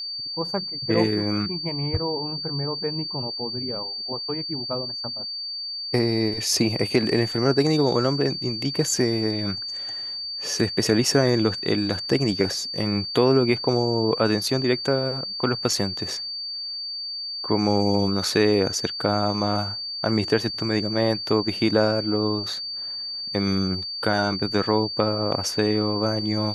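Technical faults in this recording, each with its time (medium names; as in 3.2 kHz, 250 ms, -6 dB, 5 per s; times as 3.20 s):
whine 4.6 kHz -29 dBFS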